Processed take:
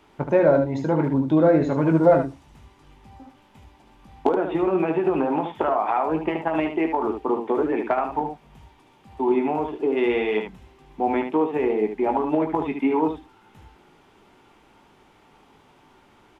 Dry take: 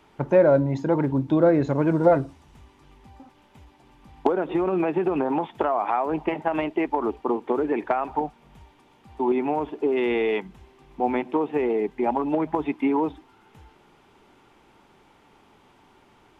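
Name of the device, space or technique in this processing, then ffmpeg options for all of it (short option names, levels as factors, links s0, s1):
slapback doubling: -filter_complex "[0:a]asplit=3[s0][s1][s2];[s1]adelay=19,volume=0.422[s3];[s2]adelay=74,volume=0.473[s4];[s0][s3][s4]amix=inputs=3:normalize=0"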